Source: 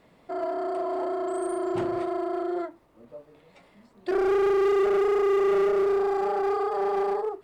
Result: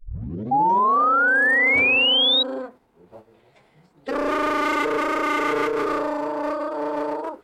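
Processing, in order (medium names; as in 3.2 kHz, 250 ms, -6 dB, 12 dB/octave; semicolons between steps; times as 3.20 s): tape start-up on the opening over 1.02 s; formant-preserving pitch shift -5 st; painted sound rise, 0.51–2.43 s, 790–3900 Hz -18 dBFS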